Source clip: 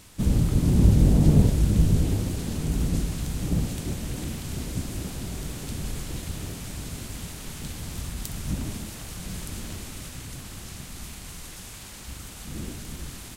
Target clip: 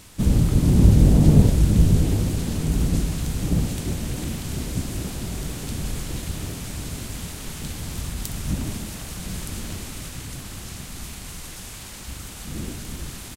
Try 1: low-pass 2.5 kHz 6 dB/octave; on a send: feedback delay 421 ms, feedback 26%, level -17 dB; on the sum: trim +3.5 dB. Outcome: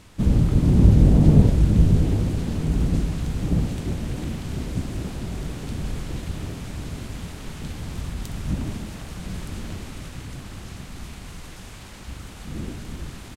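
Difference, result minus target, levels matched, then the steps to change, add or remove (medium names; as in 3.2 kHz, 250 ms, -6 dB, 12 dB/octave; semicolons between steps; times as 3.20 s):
2 kHz band -2.5 dB
remove: low-pass 2.5 kHz 6 dB/octave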